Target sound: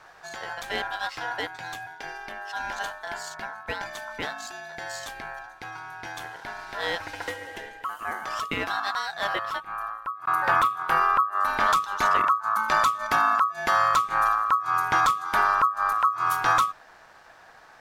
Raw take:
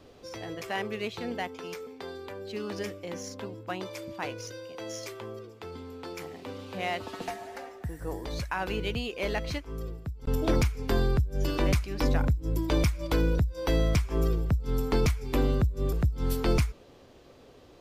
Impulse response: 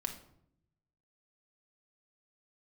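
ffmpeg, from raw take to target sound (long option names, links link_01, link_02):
-filter_complex "[0:a]asettb=1/sr,asplit=3[link_01][link_02][link_03];[link_01]atrim=end=9.274[link_04];[link_02]atrim=start=9.27:end=11.6,asetpts=PTS-STARTPTS,afade=type=in:duration=0.004:curve=qsin,afade=type=out:start_time=2.326:duration=0.004:curve=qsin,equalizer=frequency=5300:width=1.2:gain=-12.5[link_05];[link_03]atrim=start=11.596[link_06];[link_04][link_05]acrossfade=duration=0.004:curve1=hsin:curve2=qsin[link_07];[link_07][link_06]acrossfade=duration=0.004:curve1=qsin:curve2=hsin,aeval=exprs='val(0)*sin(2*PI*1200*n/s)':channel_layout=same,volume=5.5dB"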